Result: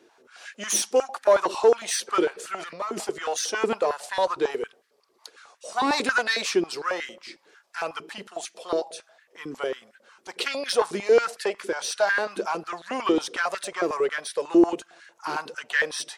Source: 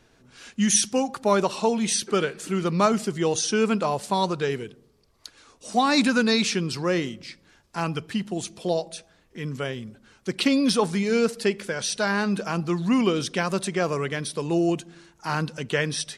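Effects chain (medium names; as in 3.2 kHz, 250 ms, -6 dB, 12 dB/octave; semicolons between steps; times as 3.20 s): single-diode clipper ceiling -17 dBFS; 2.55–3.04 s: compressor with a negative ratio -29 dBFS, ratio -1; step-sequenced high-pass 11 Hz 350–1700 Hz; trim -2 dB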